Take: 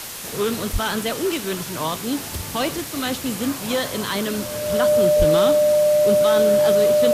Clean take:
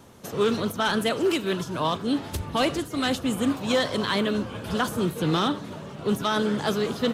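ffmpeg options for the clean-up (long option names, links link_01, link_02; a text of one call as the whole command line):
ffmpeg -i in.wav -filter_complex "[0:a]bandreject=frequency=600:width=30,asplit=3[link_01][link_02][link_03];[link_01]afade=type=out:start_time=0.72:duration=0.02[link_04];[link_02]highpass=frequency=140:width=0.5412,highpass=frequency=140:width=1.3066,afade=type=in:start_time=0.72:duration=0.02,afade=type=out:start_time=0.84:duration=0.02[link_05];[link_03]afade=type=in:start_time=0.84:duration=0.02[link_06];[link_04][link_05][link_06]amix=inputs=3:normalize=0,asplit=3[link_07][link_08][link_09];[link_07]afade=type=out:start_time=5.18:duration=0.02[link_10];[link_08]highpass=frequency=140:width=0.5412,highpass=frequency=140:width=1.3066,afade=type=in:start_time=5.18:duration=0.02,afade=type=out:start_time=5.3:duration=0.02[link_11];[link_09]afade=type=in:start_time=5.3:duration=0.02[link_12];[link_10][link_11][link_12]amix=inputs=3:normalize=0,afwtdn=0.025" out.wav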